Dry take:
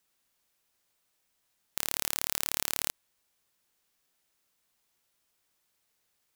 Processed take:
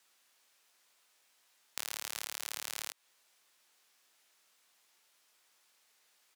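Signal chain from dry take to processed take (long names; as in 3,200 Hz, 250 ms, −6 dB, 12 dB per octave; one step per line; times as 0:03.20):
double-tracking delay 19 ms −10 dB
brickwall limiter −7.5 dBFS, peak gain reduction 5.5 dB
meter weighting curve A
downward compressor 5 to 1, threshold −40 dBFS, peak gain reduction 9 dB
level +7 dB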